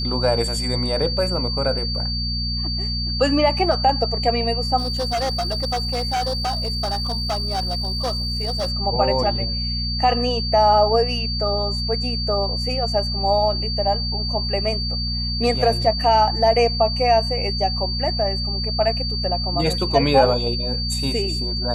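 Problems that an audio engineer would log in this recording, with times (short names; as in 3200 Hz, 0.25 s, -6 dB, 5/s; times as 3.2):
hum 60 Hz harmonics 4 -26 dBFS
tone 4600 Hz -25 dBFS
4.77–8.72 clipped -19 dBFS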